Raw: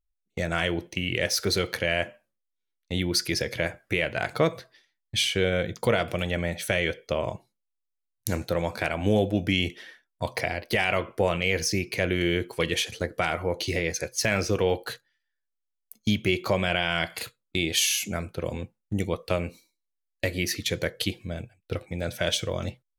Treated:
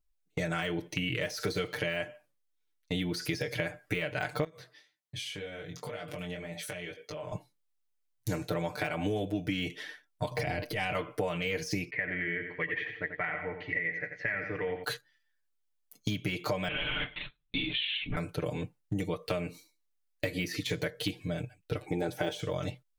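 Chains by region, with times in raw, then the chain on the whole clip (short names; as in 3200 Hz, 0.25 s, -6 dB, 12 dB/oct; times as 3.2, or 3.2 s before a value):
4.44–7.32 HPF 63 Hz + compressor, threshold -36 dBFS + chorus 1.9 Hz, delay 18.5 ms, depth 4.3 ms
10.31–10.95 low shelf 270 Hz +9.5 dB + negative-ratio compressor -29 dBFS
11.9–14.84 ladder low-pass 2000 Hz, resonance 85% + feedback echo 88 ms, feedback 40%, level -9 dB
16.68–18.17 bell 660 Hz -12.5 dB 2.5 oct + LPC vocoder at 8 kHz whisper
21.86–22.41 high shelf 8600 Hz +6 dB + small resonant body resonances 370/800 Hz, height 18 dB, ringing for 40 ms
whole clip: de-esser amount 75%; comb 6.7 ms, depth 92%; compressor, threshold -29 dBFS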